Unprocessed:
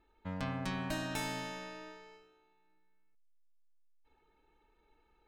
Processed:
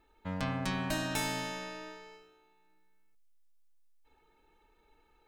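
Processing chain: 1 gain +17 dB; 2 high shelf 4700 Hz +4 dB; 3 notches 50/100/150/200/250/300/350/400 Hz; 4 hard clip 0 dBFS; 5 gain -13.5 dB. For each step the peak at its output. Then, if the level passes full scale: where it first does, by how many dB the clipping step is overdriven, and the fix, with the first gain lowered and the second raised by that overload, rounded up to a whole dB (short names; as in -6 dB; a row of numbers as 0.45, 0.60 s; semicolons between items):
-5.0, -4.5, -5.5, -5.5, -19.0 dBFS; no overload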